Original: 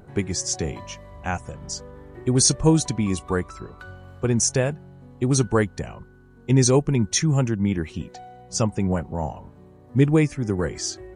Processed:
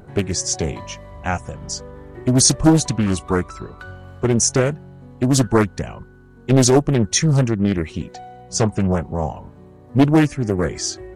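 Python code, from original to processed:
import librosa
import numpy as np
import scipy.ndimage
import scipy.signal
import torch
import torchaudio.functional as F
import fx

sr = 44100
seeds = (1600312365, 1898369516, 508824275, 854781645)

y = fx.doppler_dist(x, sr, depth_ms=0.78)
y = y * 10.0 ** (4.5 / 20.0)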